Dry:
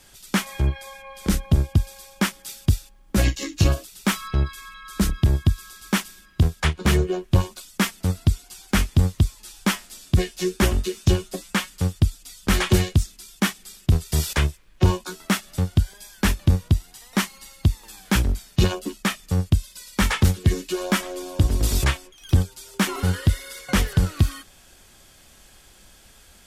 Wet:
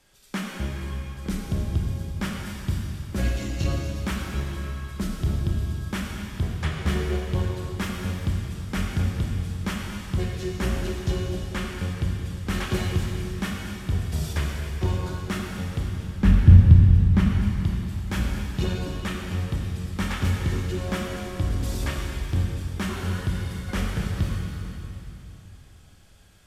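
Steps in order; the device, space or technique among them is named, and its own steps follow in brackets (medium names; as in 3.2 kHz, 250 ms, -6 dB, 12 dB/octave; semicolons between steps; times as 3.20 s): 15.93–17.39 s: tone controls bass +14 dB, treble -8 dB; swimming-pool hall (reverberation RT60 3.2 s, pre-delay 26 ms, DRR -1.5 dB; treble shelf 5.4 kHz -6.5 dB); trim -9 dB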